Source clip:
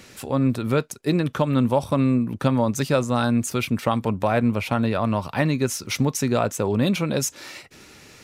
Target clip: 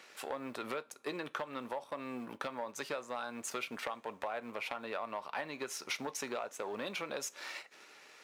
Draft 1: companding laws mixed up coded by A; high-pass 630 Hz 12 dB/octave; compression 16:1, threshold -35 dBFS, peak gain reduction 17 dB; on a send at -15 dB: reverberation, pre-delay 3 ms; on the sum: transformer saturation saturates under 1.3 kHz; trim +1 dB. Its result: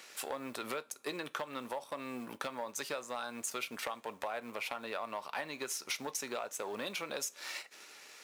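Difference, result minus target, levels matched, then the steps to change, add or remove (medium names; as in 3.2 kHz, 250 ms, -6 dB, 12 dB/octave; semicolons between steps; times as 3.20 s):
8 kHz band +3.5 dB
add after high-pass: treble shelf 4.6 kHz -11.5 dB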